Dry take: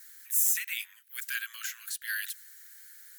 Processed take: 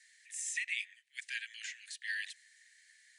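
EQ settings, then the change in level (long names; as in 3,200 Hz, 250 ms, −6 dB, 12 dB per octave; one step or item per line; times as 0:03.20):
Chebyshev band-pass filter 1,800–9,500 Hz, order 5
high-shelf EQ 2,400 Hz −9.5 dB
high-shelf EQ 6,000 Hz −10 dB
+6.0 dB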